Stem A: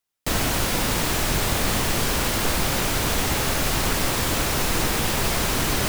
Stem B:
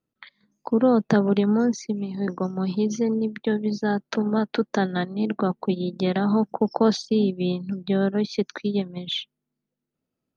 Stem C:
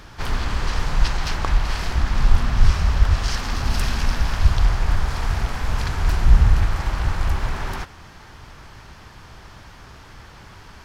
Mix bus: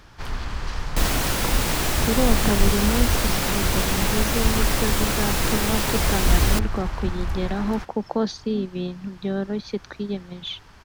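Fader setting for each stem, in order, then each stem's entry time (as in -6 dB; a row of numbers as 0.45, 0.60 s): -1.0, -4.0, -6.0 dB; 0.70, 1.35, 0.00 s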